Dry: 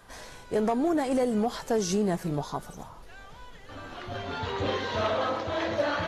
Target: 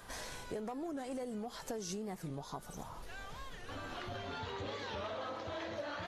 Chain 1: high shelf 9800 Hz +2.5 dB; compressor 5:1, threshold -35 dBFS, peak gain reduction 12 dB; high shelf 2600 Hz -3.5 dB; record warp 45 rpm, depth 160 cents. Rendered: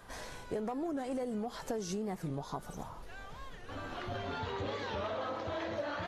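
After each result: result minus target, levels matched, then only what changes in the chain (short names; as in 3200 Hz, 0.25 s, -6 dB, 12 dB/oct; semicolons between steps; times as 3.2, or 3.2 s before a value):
compressor: peak gain reduction -5 dB; 4000 Hz band -3.5 dB
change: compressor 5:1, threshold -41 dBFS, peak gain reduction 16.5 dB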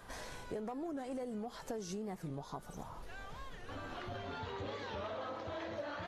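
4000 Hz band -3.0 dB
change: second high shelf 2600 Hz +2.5 dB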